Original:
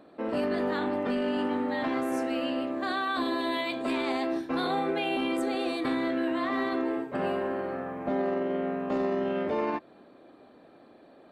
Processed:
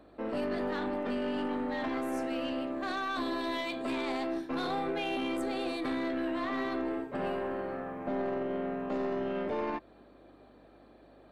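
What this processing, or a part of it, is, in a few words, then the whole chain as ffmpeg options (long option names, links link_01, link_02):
valve amplifier with mains hum: -af "aeval=exprs='(tanh(14.1*val(0)+0.25)-tanh(0.25))/14.1':channel_layout=same,aeval=exprs='val(0)+0.000708*(sin(2*PI*50*n/s)+sin(2*PI*2*50*n/s)/2+sin(2*PI*3*50*n/s)/3+sin(2*PI*4*50*n/s)/4+sin(2*PI*5*50*n/s)/5)':channel_layout=same,volume=-2.5dB"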